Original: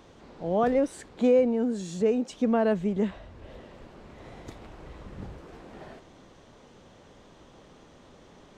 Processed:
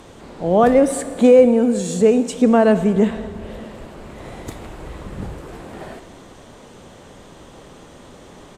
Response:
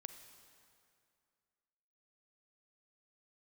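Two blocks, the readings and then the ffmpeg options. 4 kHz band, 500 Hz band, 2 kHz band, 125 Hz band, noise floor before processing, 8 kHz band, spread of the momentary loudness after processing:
+10.5 dB, +11.0 dB, +11.0 dB, +11.0 dB, -54 dBFS, +16.0 dB, 23 LU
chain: -filter_complex "[0:a]aexciter=amount=3.3:drive=4.2:freq=7.6k,asplit=2[a][b];[1:a]atrim=start_sample=2205[c];[b][c]afir=irnorm=-1:irlink=0,volume=11.5dB[d];[a][d]amix=inputs=2:normalize=0,aresample=32000,aresample=44100,volume=1dB"

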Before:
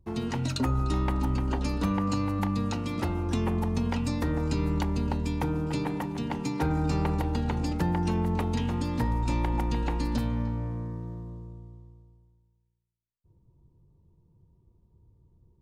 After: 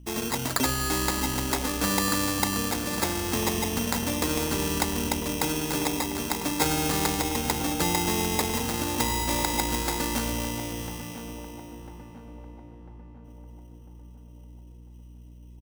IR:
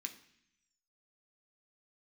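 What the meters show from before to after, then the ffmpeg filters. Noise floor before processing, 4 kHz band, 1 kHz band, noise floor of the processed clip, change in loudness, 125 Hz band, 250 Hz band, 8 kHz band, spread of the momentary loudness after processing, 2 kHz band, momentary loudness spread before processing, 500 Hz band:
-67 dBFS, +12.5 dB, +4.5 dB, -47 dBFS, +2.5 dB, -5.5 dB, -0.5 dB, +18.5 dB, 14 LU, +9.5 dB, 5 LU, +3.5 dB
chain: -filter_complex "[0:a]acrusher=samples=15:mix=1:aa=0.000001,bass=f=250:g=-12,treble=f=4k:g=9,aeval=exprs='val(0)+0.00282*(sin(2*PI*60*n/s)+sin(2*PI*2*60*n/s)/2+sin(2*PI*3*60*n/s)/3+sin(2*PI*4*60*n/s)/4+sin(2*PI*5*60*n/s)/5)':c=same,asplit=2[a][b];[b]adelay=998,lowpass=f=1.4k:p=1,volume=-11dB,asplit=2[c][d];[d]adelay=998,lowpass=f=1.4k:p=1,volume=0.54,asplit=2[e][f];[f]adelay=998,lowpass=f=1.4k:p=1,volume=0.54,asplit=2[g][h];[h]adelay=998,lowpass=f=1.4k:p=1,volume=0.54,asplit=2[i][j];[j]adelay=998,lowpass=f=1.4k:p=1,volume=0.54,asplit=2[k][l];[l]adelay=998,lowpass=f=1.4k:p=1,volume=0.54[m];[c][e][g][i][k][m]amix=inputs=6:normalize=0[n];[a][n]amix=inputs=2:normalize=0,volume=5dB"

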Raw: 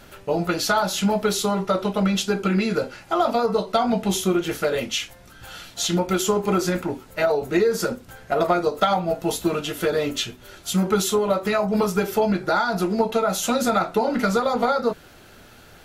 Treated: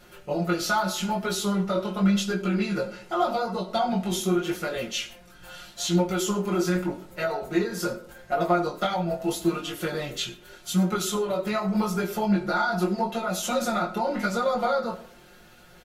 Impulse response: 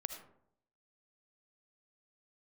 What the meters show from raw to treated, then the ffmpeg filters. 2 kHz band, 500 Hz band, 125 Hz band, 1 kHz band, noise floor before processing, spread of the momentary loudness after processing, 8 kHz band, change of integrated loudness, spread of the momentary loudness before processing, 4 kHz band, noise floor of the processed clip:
-3.0 dB, -6.0 dB, -1.5 dB, -4.0 dB, -48 dBFS, 7 LU, -4.5 dB, -4.0 dB, 6 LU, -4.5 dB, -52 dBFS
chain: -filter_complex "[0:a]flanger=delay=17:depth=6.3:speed=0.83,aecho=1:1:5.6:0.82,asplit=2[a][b];[1:a]atrim=start_sample=2205[c];[b][c]afir=irnorm=-1:irlink=0,volume=-2dB[d];[a][d]amix=inputs=2:normalize=0,volume=-8dB"

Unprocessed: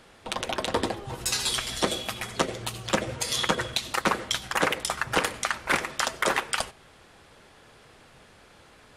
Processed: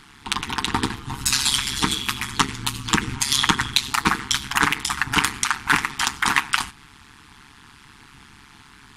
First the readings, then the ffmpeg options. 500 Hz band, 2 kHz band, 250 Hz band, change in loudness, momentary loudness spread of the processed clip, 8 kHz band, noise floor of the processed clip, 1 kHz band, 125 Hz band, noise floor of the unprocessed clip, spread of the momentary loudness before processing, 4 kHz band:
-7.5 dB, +6.5 dB, +5.5 dB, +6.0 dB, 6 LU, +7.0 dB, -49 dBFS, +5.5 dB, +7.0 dB, -55 dBFS, 6 LU, +7.0 dB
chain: -af "afftfilt=real='re*(1-between(b*sr/4096,330,830))':imag='im*(1-between(b*sr/4096,330,830))':win_size=4096:overlap=0.75,tremolo=f=140:d=0.919,acontrast=65,volume=4.5dB"

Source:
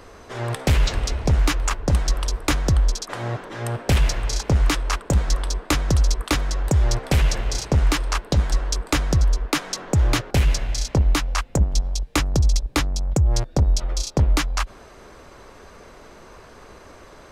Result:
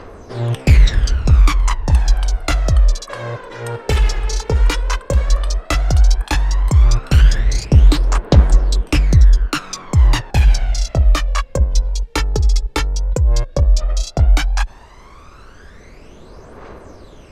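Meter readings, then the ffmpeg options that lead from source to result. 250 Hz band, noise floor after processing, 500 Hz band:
+2.0 dB, -40 dBFS, +3.0 dB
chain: -af "highshelf=f=8.6k:g=-8.5,aphaser=in_gain=1:out_gain=1:delay=2.4:decay=0.64:speed=0.12:type=triangular,volume=1dB"

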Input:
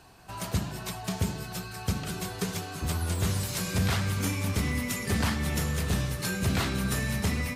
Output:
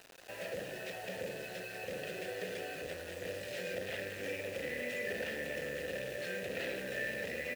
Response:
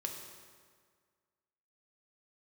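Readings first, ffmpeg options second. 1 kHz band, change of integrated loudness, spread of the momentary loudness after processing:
-13.0 dB, -10.0 dB, 5 LU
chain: -filter_complex "[0:a]asplit=2[a][b];[b]aecho=0:1:625:0.15[c];[a][c]amix=inputs=2:normalize=0,aeval=exprs='(tanh(63.1*val(0)+0.45)-tanh(0.45))/63.1':c=same,asplit=3[d][e][f];[d]bandpass=f=530:t=q:w=8,volume=0dB[g];[e]bandpass=f=1.84k:t=q:w=8,volume=-6dB[h];[f]bandpass=f=2.48k:t=q:w=8,volume=-9dB[i];[g][h][i]amix=inputs=3:normalize=0,acrusher=bits=10:mix=0:aa=0.000001,volume=14.5dB"

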